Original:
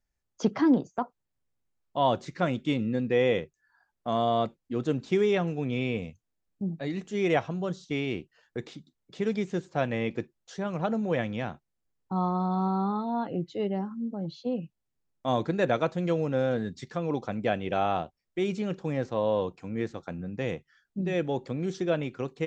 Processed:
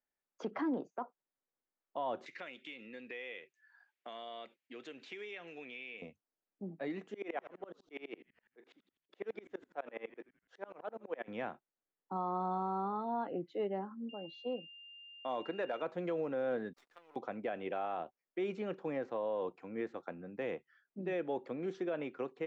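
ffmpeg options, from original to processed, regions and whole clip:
-filter_complex "[0:a]asettb=1/sr,asplit=3[s0][s1][s2];[s0]atrim=end=2.264[s3];[s1]atrim=start=2.26:end=6.02,asetpts=PTS-STARTPTS,afade=t=in:d=0.004:c=qsin,afade=t=out:st=3.756:d=0.004:c=qsin,highpass=f=400:p=1,highshelf=f=1600:t=q:w=1.5:g=11.5,acompressor=threshold=0.0112:ratio=4:attack=3.2:release=140:knee=1:detection=peak[s4];[s2]atrim=start=6.016[s5];[s3][s4]acrossfade=d=0.004:c1=hsin:c2=qsin[s6];[s6][s5]acrossfade=d=0.004:c1=qsin:c2=hsin,asettb=1/sr,asplit=3[s7][s8][s9];[s7]atrim=end=7.144[s10];[s8]atrim=start=7.14:end=11.28,asetpts=PTS-STARTPTS,afade=t=in:d=0.004:c=qsin,afade=t=out:st=4.136:d=0.004:c=qsin,highpass=330,asplit=6[s11][s12][s13][s14][s15][s16];[s12]adelay=81,afreqshift=-100,volume=0.141[s17];[s13]adelay=162,afreqshift=-200,volume=0.0759[s18];[s14]adelay=243,afreqshift=-300,volume=0.0412[s19];[s15]adelay=324,afreqshift=-400,volume=0.0221[s20];[s16]adelay=405,afreqshift=-500,volume=0.012[s21];[s11][s17][s18][s19][s20][s21]amix=inputs=6:normalize=0,atrim=end_sample=182574,aeval=exprs='val(0)*pow(10,-29*if(lt(mod(-12*n/s,1),2*abs(-12)/1000),1-mod(-12*n/s,1)/(2*abs(-12)/1000),(mod(-12*n/s,1)-2*abs(-12)/1000)/(1-2*abs(-12)/1000))/20)':c=same[s22];[s9]atrim=start=11.276[s23];[s10][s22]acrossfade=d=0.004:c1=hsin:c2=qsin[s24];[s24][s23]acrossfade=d=0.004:c1=qsin:c2=hsin,asettb=1/sr,asplit=3[s25][s26][s27];[s25]atrim=end=14.094[s28];[s26]atrim=start=14.09:end=15.82,asetpts=PTS-STARTPTS,afade=t=in:d=0.004:c=qsin,afade=t=out:st=1.726:d=0.004:c=qsin,lowshelf=f=210:g=-10,aeval=exprs='val(0)+0.00708*sin(2*PI*2800*n/s)':c=same,asoftclip=type=hard:threshold=0.119[s29];[s27]atrim=start=15.816[s30];[s28][s29]acrossfade=d=0.004:c1=hsin:c2=qsin[s31];[s31][s30]acrossfade=d=0.004:c1=qsin:c2=hsin,asettb=1/sr,asplit=3[s32][s33][s34];[s32]atrim=end=16.734[s35];[s33]atrim=start=16.73:end=17.16,asetpts=PTS-STARTPTS,afade=t=in:d=0.004:c=qsin,afade=t=out:st=0.426:d=0.004:c=qsin,aderivative,acrusher=bits=8:dc=4:mix=0:aa=0.000001[s36];[s34]atrim=start=17.156[s37];[s35][s36]acrossfade=d=0.004:c1=hsin:c2=qsin[s38];[s38][s37]acrossfade=d=0.004:c1=qsin:c2=hsin,acrossover=split=250 2800:gain=0.0794 1 0.126[s39][s40][s41];[s39][s40][s41]amix=inputs=3:normalize=0,alimiter=level_in=1.06:limit=0.0631:level=0:latency=1:release=78,volume=0.944,volume=0.668"

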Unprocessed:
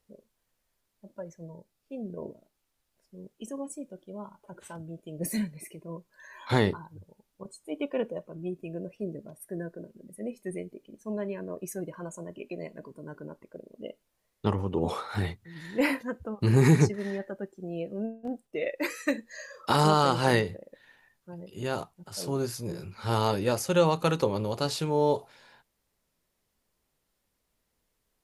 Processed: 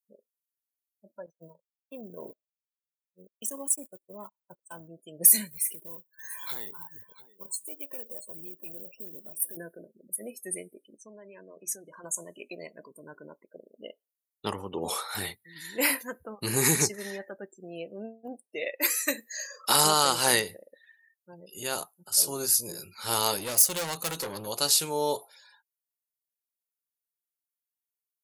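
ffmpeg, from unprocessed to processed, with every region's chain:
-filter_complex "[0:a]asettb=1/sr,asplit=3[s0][s1][s2];[s0]atrim=end=1.264[s3];[s1]atrim=start=1.26:end=4.88,asetpts=PTS-STARTPTS,afade=t=in:d=0.004:c=qsin,afade=t=out:st=3.616:d=0.004:c=qsin,aeval=exprs='val(0)+0.5*0.00299*sgn(val(0))':c=same,agate=range=0.02:threshold=0.00708:ratio=16:release=100:detection=peak[s4];[s2]atrim=start=4.876[s5];[s3][s4]acrossfade=d=0.004:c1=hsin:c2=qsin[s6];[s6][s5]acrossfade=d=0.004:c1=qsin:c2=hsin,asettb=1/sr,asplit=3[s7][s8][s9];[s7]atrim=end=5.514[s10];[s8]atrim=start=5.51:end=9.57,asetpts=PTS-STARTPTS,afade=t=in:d=0.004:c=qsin,afade=t=out:st=4.056:d=0.004:c=qsin,acompressor=threshold=0.01:ratio=6:attack=3.2:release=140:knee=1:detection=peak,aecho=1:1:686:0.211,atrim=end_sample=179046,acrusher=bits=4:mode=log:mix=0:aa=0.000001[s11];[s9]atrim=start=9.566[s12];[s10][s11]acrossfade=d=0.004:c1=hsin:c2=qsin[s13];[s13][s12]acrossfade=d=0.004:c1=qsin:c2=hsin,asettb=1/sr,asplit=3[s14][s15][s16];[s14]atrim=end=10.974[s17];[s15]atrim=start=10.97:end=12.04,asetpts=PTS-STARTPTS,afade=t=in:d=0.004:c=qsin,afade=t=out:st=1.066:d=0.004:c=qsin,lowpass=6700,acompressor=threshold=0.01:ratio=8:attack=3.2:release=140:knee=1:detection=peak,bandreject=f=60:t=h:w=6,bandreject=f=120:t=h:w=6,bandreject=f=180:t=h:w=6,bandreject=f=240:t=h:w=6,bandreject=f=300:t=h:w=6[s18];[s16]atrim=start=12.036[s19];[s17][s18]acrossfade=d=0.004:c1=hsin:c2=qsin[s20];[s20][s19]acrossfade=d=0.004:c1=qsin:c2=hsin,asettb=1/sr,asplit=3[s21][s22][s23];[s21]atrim=end=23.374[s24];[s22]atrim=start=23.37:end=24.47,asetpts=PTS-STARTPTS,afade=t=in:d=0.004:c=qsin,afade=t=out:st=1.096:d=0.004:c=qsin,lowshelf=f=140:g=7,aeval=exprs='(tanh(22.4*val(0)+0.25)-tanh(0.25))/22.4':c=same[s25];[s23]atrim=start=24.466[s26];[s24][s25]acrossfade=d=0.004:c1=hsin:c2=qsin[s27];[s27][s26]acrossfade=d=0.004:c1=qsin:c2=hsin,aemphasis=mode=production:type=riaa,afftdn=nr=31:nf=-52,highshelf=f=5300:g=6,volume=0.891"

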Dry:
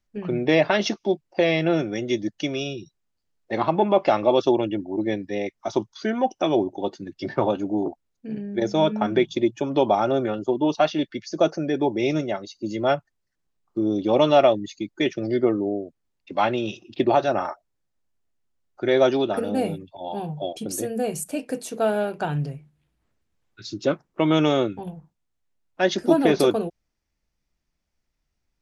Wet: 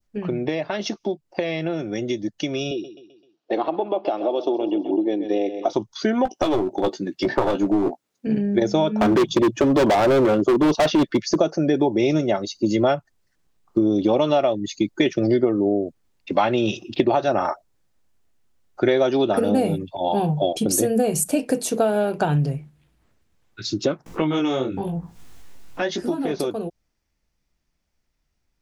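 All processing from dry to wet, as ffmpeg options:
-filter_complex "[0:a]asettb=1/sr,asplit=3[s0][s1][s2];[s0]atrim=end=2.714[s3];[s1]atrim=start=2.71:end=5.73,asetpts=PTS-STARTPTS,afade=t=in:d=0.004:c=qsin,afade=t=out:st=3.016:d=0.004:c=qsin,highpass=280,equalizer=f=310:t=q:w=4:g=10,equalizer=f=460:t=q:w=4:g=6,equalizer=f=710:t=q:w=4:g=7,equalizer=f=2000:t=q:w=4:g=-7,equalizer=f=3000:t=q:w=4:g=6,lowpass=f=5600:w=0.5412,lowpass=f=5600:w=1.3066,aecho=1:1:129|258|387|516:0.2|0.0918|0.0422|0.0194,atrim=end_sample=133182[s4];[s2]atrim=start=5.726[s5];[s3][s4]acrossfade=d=0.004:c1=hsin:c2=qsin[s6];[s6][s5]acrossfade=d=0.004:c1=qsin:c2=hsin,asettb=1/sr,asplit=3[s7][s8][s9];[s7]atrim=end=6.254[s10];[s8]atrim=start=6.25:end=8.27,asetpts=PTS-STARTPTS,afade=t=in:d=0.004:c=qsin,afade=t=out:st=2.016:d=0.004:c=qsin,highpass=190,aeval=exprs='clip(val(0),-1,0.0596)':c=same,asplit=2[s11][s12];[s12]adelay=16,volume=0.335[s13];[s11][s13]amix=inputs=2:normalize=0,atrim=end_sample=89082[s14];[s9]atrim=start=8.266[s15];[s10][s14]acrossfade=d=0.004:c1=hsin:c2=qsin[s16];[s16][s15]acrossfade=d=0.004:c1=qsin:c2=hsin,asettb=1/sr,asplit=3[s17][s18][s19];[s17]atrim=end=9.014[s20];[s18]atrim=start=9.01:end=11.39,asetpts=PTS-STARTPTS,afade=t=in:d=0.004:c=qsin,afade=t=out:st=2.376:d=0.004:c=qsin,equalizer=f=530:w=0.31:g=7.5,bandreject=f=840:w=5.6,volume=8.91,asoftclip=hard,volume=0.112[s21];[s19]atrim=start=11.386[s22];[s20][s21]acrossfade=d=0.004:c1=hsin:c2=qsin[s23];[s23][s22]acrossfade=d=0.004:c1=qsin:c2=hsin,asettb=1/sr,asplit=3[s24][s25][s26];[s24]atrim=end=24.064[s27];[s25]atrim=start=24.06:end=26.31,asetpts=PTS-STARTPTS,afade=t=in:d=0.004:c=qsin,afade=t=out:st=2.246:d=0.004:c=qsin,bandreject=f=610:w=9.9,acompressor=mode=upward:threshold=0.1:ratio=2.5:attack=3.2:release=140:knee=2.83:detection=peak,flanger=delay=17:depth=6.5:speed=1[s28];[s26]atrim=start=26.306[s29];[s27][s28]acrossfade=d=0.004:c1=hsin:c2=qsin[s30];[s30][s29]acrossfade=d=0.004:c1=qsin:c2=hsin,acompressor=threshold=0.0562:ratio=10,adynamicequalizer=threshold=0.00355:dfrequency=2000:dqfactor=0.79:tfrequency=2000:tqfactor=0.79:attack=5:release=100:ratio=0.375:range=2:mode=cutabove:tftype=bell,dynaudnorm=f=340:g=31:m=2.11,volume=1.58"

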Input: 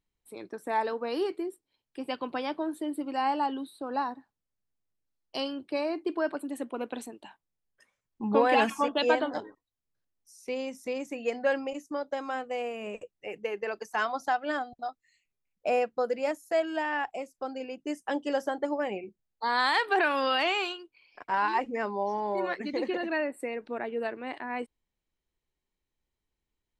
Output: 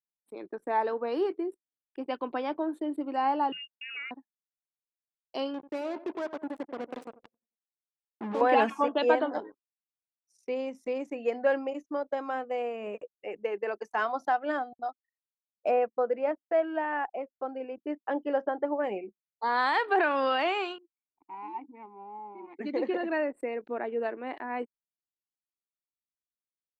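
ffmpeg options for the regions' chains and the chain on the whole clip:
-filter_complex "[0:a]asettb=1/sr,asplit=3[s0][s1][s2];[s0]atrim=end=3.524[s3];[s1]atrim=start=3.52:end=4.11,asetpts=PTS-STARTPTS,afade=t=in:d=0.004:c=qsin,afade=t=out:st=0.586:d=0.004:c=qsin,lowpass=f=2600:t=q:w=0.5098,lowpass=f=2600:t=q:w=0.6013,lowpass=f=2600:t=q:w=0.9,lowpass=f=2600:t=q:w=2.563,afreqshift=-3100,acompressor=threshold=0.0224:ratio=3:attack=3.2:release=140:knee=1:detection=peak[s4];[s2]atrim=start=4.106[s5];[s3][s4]acrossfade=d=0.004:c1=hsin:c2=qsin[s6];[s6][s5]acrossfade=d=0.004:c1=qsin:c2=hsin,asettb=1/sr,asplit=3[s7][s8][s9];[s7]atrim=end=5.544[s10];[s8]atrim=start=5.54:end=8.41,asetpts=PTS-STARTPTS,afade=t=in:d=0.004:c=qsin,afade=t=out:st=2.866:d=0.004:c=qsin,acompressor=threshold=0.0178:ratio=2:attack=3.2:release=140:knee=1:detection=peak,acrusher=bits=5:mix=0:aa=0.5,asplit=2[s11][s12];[s12]adelay=89,lowpass=f=3000:p=1,volume=0.178,asplit=2[s13][s14];[s14]adelay=89,lowpass=f=3000:p=1,volume=0.53,asplit=2[s15][s16];[s16]adelay=89,lowpass=f=3000:p=1,volume=0.53,asplit=2[s17][s18];[s18]adelay=89,lowpass=f=3000:p=1,volume=0.53,asplit=2[s19][s20];[s20]adelay=89,lowpass=f=3000:p=1,volume=0.53[s21];[s11][s13][s15][s17][s19][s21]amix=inputs=6:normalize=0,atrim=end_sample=126567[s22];[s9]atrim=start=8.406[s23];[s10][s22]acrossfade=d=0.004:c1=hsin:c2=qsin[s24];[s24][s23]acrossfade=d=0.004:c1=qsin:c2=hsin,asettb=1/sr,asplit=3[s25][s26][s27];[s25]atrim=end=15.714[s28];[s26]atrim=start=15.71:end=18.84,asetpts=PTS-STARTPTS,afade=t=in:d=0.004:c=qsin,afade=t=out:st=3.126:d=0.004:c=qsin,lowpass=2500,lowshelf=f=140:g=-7[s29];[s27]atrim=start=18.836[s30];[s28][s29]acrossfade=d=0.004:c1=hsin:c2=qsin[s31];[s31][s30]acrossfade=d=0.004:c1=qsin:c2=hsin,asettb=1/sr,asplit=3[s32][s33][s34];[s32]atrim=end=20.784[s35];[s33]atrim=start=20.78:end=22.59,asetpts=PTS-STARTPTS,afade=t=in:d=0.004:c=qsin,afade=t=out:st=1.806:d=0.004:c=qsin,aeval=exprs='if(lt(val(0),0),0.447*val(0),val(0))':c=same,asplit=3[s36][s37][s38];[s36]bandpass=f=300:t=q:w=8,volume=1[s39];[s37]bandpass=f=870:t=q:w=8,volume=0.501[s40];[s38]bandpass=f=2240:t=q:w=8,volume=0.355[s41];[s39][s40][s41]amix=inputs=3:normalize=0,highshelf=f=6200:g=5[s42];[s34]atrim=start=22.586[s43];[s35][s42]acrossfade=d=0.004:c1=hsin:c2=qsin[s44];[s44][s43]acrossfade=d=0.004:c1=qsin:c2=hsin,highpass=250,anlmdn=0.001,lowpass=f=1300:p=1,volume=1.33"

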